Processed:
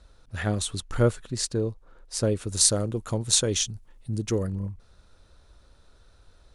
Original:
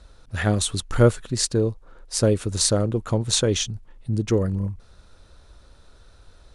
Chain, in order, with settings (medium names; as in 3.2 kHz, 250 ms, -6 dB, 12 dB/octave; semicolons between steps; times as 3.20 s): 2.47–4.47 s: treble shelf 5.7 kHz +12 dB; trim -5.5 dB